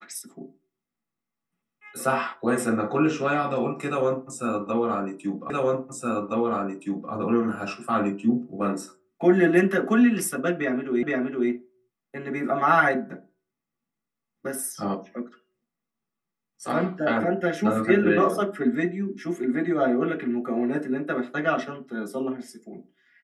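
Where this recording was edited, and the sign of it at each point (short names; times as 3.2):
5.5 repeat of the last 1.62 s
11.03 repeat of the last 0.47 s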